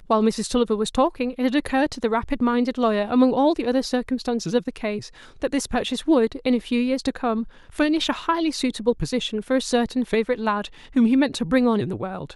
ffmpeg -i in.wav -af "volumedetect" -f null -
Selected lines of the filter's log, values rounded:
mean_volume: -22.2 dB
max_volume: -5.4 dB